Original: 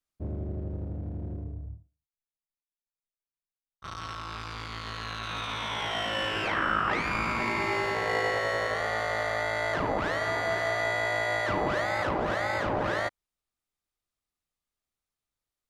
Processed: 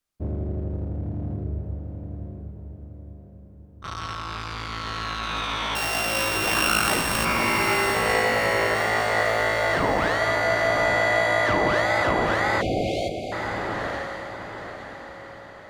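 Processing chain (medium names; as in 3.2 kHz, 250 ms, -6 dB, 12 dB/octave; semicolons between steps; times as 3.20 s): 5.75–7.25 s: sorted samples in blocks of 16 samples; echo that smears into a reverb 949 ms, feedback 41%, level -5.5 dB; 12.62–13.32 s: spectral selection erased 790–2100 Hz; trim +5.5 dB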